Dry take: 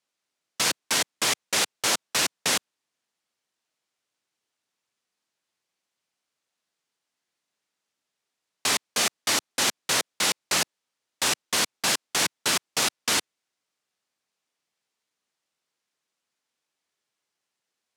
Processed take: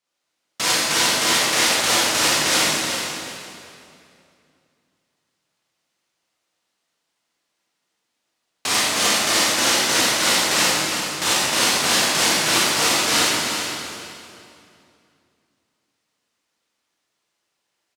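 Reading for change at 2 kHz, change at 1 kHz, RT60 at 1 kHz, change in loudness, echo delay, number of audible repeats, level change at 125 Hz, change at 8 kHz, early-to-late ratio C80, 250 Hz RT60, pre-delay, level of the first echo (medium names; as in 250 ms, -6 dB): +8.5 dB, +9.0 dB, 2.5 s, +7.0 dB, 378 ms, 1, +9.0 dB, +6.5 dB, -3.0 dB, 2.9 s, 25 ms, -7.0 dB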